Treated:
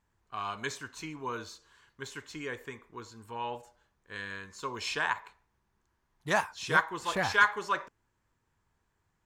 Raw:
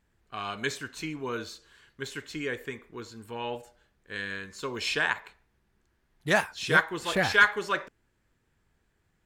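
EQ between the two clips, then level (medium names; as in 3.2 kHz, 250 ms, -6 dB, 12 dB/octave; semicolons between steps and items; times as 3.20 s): fifteen-band graphic EQ 100 Hz +4 dB, 1 kHz +10 dB, 6.3 kHz +5 dB; -6.5 dB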